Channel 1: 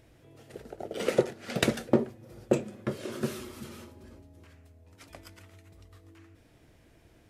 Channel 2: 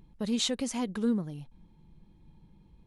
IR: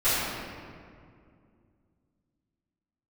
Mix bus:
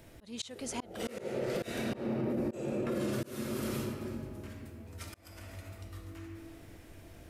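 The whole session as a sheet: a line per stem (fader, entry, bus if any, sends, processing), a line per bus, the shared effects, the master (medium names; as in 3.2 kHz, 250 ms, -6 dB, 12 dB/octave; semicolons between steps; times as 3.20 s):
+2.0 dB, 0.00 s, send -14.5 dB, treble shelf 8.9 kHz +9 dB; auto duck -8 dB, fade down 1.40 s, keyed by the second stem
+2.5 dB, 0.00 s, no send, bass shelf 380 Hz -9.5 dB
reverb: on, RT60 2.3 s, pre-delay 3 ms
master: slow attack 459 ms; peak limiter -25.5 dBFS, peak gain reduction 8 dB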